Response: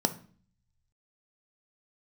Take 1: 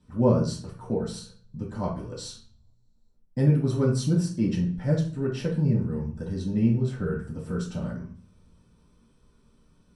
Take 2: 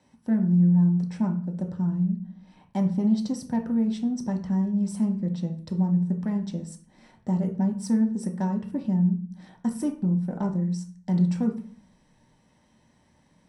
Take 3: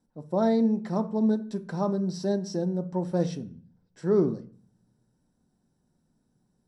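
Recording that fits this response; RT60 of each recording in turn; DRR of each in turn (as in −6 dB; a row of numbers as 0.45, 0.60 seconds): 3; 0.45, 0.45, 0.45 seconds; −5.5, 2.0, 9.0 decibels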